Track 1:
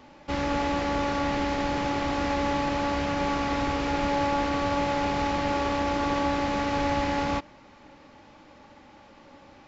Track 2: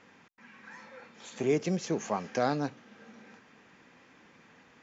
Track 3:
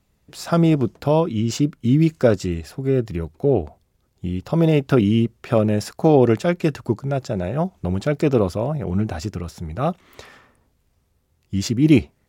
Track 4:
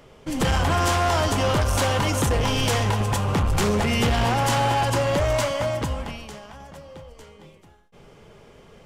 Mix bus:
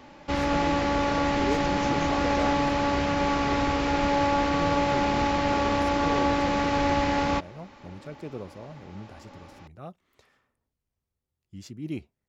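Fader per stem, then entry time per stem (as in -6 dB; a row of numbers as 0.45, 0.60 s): +2.0 dB, -4.5 dB, -20.0 dB, off; 0.00 s, 0.00 s, 0.00 s, off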